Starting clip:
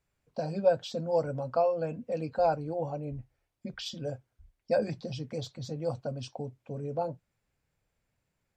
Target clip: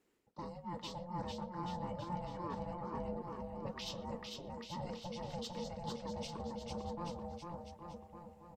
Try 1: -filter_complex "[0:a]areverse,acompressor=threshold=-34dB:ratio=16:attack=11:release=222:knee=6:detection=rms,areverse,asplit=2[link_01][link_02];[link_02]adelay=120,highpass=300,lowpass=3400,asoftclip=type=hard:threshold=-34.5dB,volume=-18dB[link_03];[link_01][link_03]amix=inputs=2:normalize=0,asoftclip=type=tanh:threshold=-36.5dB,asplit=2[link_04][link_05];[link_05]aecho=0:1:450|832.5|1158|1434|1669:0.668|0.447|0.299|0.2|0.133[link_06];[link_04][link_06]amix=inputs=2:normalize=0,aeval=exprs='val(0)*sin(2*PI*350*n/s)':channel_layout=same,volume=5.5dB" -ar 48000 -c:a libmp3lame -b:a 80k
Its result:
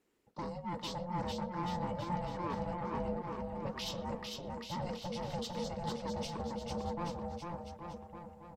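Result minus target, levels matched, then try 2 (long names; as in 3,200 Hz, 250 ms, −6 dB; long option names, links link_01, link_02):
downward compressor: peak gain reduction −7 dB
-filter_complex "[0:a]areverse,acompressor=threshold=-41.5dB:ratio=16:attack=11:release=222:knee=6:detection=rms,areverse,asplit=2[link_01][link_02];[link_02]adelay=120,highpass=300,lowpass=3400,asoftclip=type=hard:threshold=-34.5dB,volume=-18dB[link_03];[link_01][link_03]amix=inputs=2:normalize=0,asoftclip=type=tanh:threshold=-36.5dB,asplit=2[link_04][link_05];[link_05]aecho=0:1:450|832.5|1158|1434|1669:0.668|0.447|0.299|0.2|0.133[link_06];[link_04][link_06]amix=inputs=2:normalize=0,aeval=exprs='val(0)*sin(2*PI*350*n/s)':channel_layout=same,volume=5.5dB" -ar 48000 -c:a libmp3lame -b:a 80k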